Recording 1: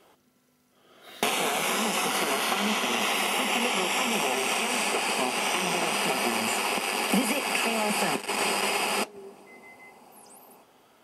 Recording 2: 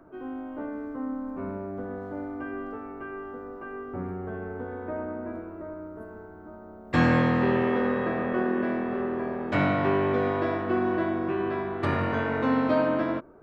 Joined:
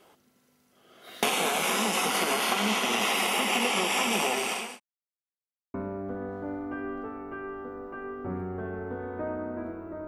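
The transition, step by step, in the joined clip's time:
recording 1
4.16–4.8 fade out equal-power
4.8–5.74 mute
5.74 switch to recording 2 from 1.43 s

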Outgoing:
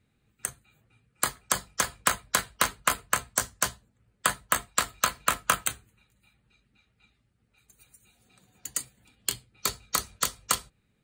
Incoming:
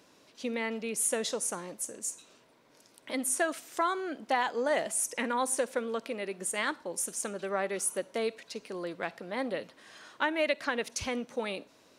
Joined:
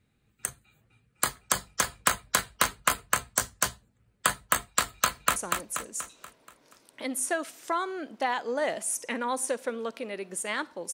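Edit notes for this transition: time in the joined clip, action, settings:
outgoing
5.07–5.36 echo throw 0.24 s, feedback 50%, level -4 dB
5.36 switch to incoming from 1.45 s

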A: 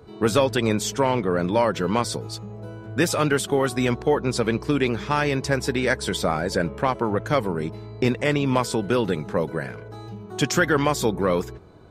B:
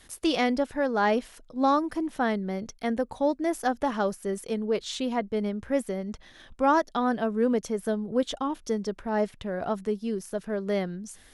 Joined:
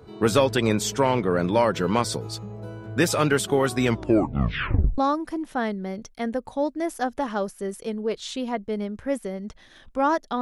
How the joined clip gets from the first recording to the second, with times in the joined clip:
A
3.86 tape stop 1.12 s
4.98 switch to B from 1.62 s

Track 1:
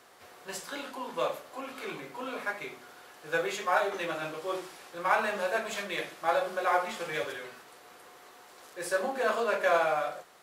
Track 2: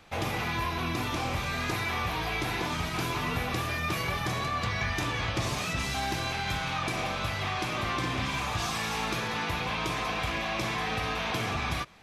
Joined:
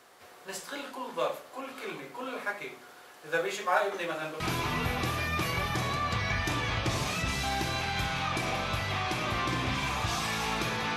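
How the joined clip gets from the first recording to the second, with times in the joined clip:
track 1
4.4 switch to track 2 from 2.91 s

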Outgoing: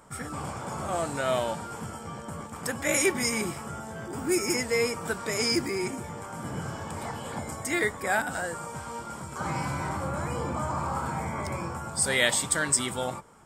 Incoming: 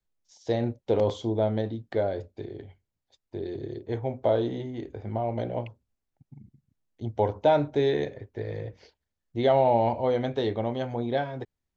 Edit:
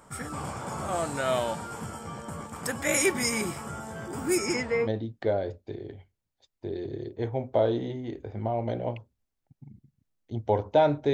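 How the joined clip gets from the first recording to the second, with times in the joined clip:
outgoing
4.37–4.9 LPF 11000 Hz -> 1100 Hz
4.86 switch to incoming from 1.56 s, crossfade 0.08 s

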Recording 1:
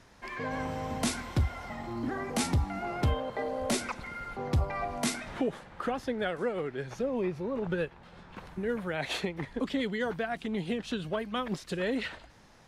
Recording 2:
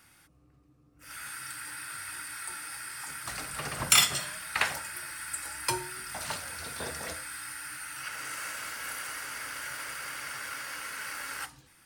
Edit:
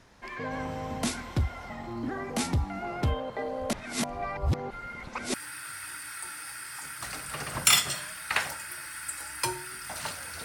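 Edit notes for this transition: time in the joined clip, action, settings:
recording 1
3.73–5.34 reverse
5.34 switch to recording 2 from 1.59 s

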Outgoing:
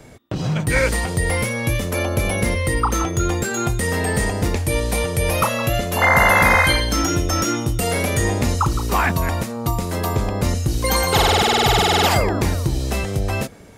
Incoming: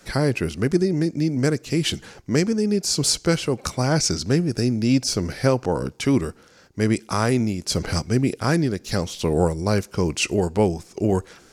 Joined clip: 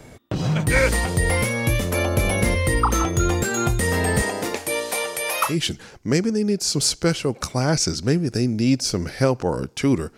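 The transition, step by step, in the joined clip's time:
outgoing
4.21–5.57 HPF 250 Hz -> 1000 Hz
5.5 switch to incoming from 1.73 s, crossfade 0.14 s

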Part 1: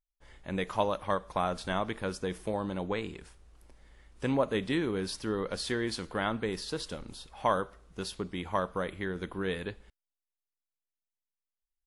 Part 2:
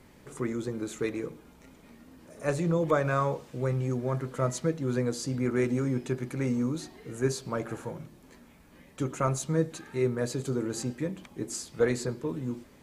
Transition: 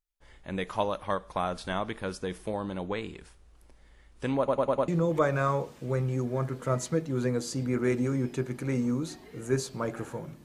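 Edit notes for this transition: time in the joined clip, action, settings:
part 1
4.38 stutter in place 0.10 s, 5 plays
4.88 switch to part 2 from 2.6 s

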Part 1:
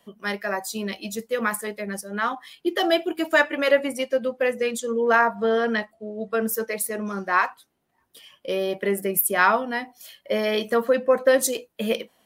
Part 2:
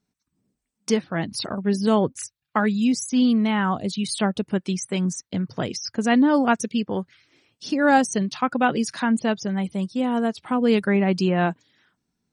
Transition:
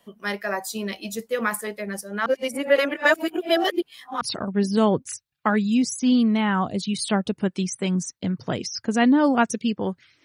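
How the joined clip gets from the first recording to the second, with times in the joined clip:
part 1
2.26–4.21 reverse
4.21 switch to part 2 from 1.31 s

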